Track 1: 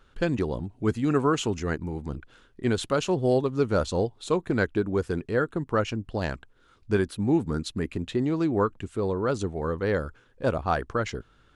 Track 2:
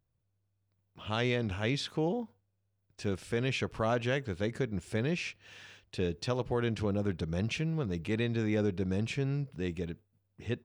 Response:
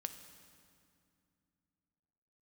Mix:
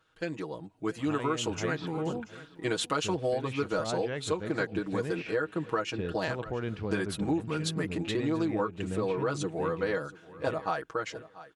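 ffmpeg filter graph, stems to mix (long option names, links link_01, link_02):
-filter_complex "[0:a]highpass=frequency=440:poles=1,aecho=1:1:6.3:0.91,dynaudnorm=framelen=110:gausssize=17:maxgain=12dB,volume=-8dB,asplit=2[link_01][link_02];[link_02]volume=-21.5dB[link_03];[1:a]lowpass=2800,volume=-2.5dB,asplit=2[link_04][link_05];[link_05]volume=-19dB[link_06];[link_03][link_06]amix=inputs=2:normalize=0,aecho=0:1:684|1368|2052:1|0.17|0.0289[link_07];[link_01][link_04][link_07]amix=inputs=3:normalize=0,acompressor=threshold=-26dB:ratio=6"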